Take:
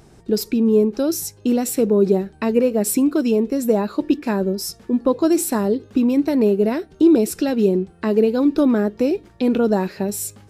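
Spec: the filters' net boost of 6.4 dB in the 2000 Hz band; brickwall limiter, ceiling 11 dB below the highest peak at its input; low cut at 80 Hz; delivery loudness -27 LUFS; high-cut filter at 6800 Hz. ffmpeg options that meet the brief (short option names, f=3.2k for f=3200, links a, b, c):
-af "highpass=80,lowpass=6.8k,equalizer=f=2k:t=o:g=8.5,volume=-3dB,alimiter=limit=-18.5dB:level=0:latency=1"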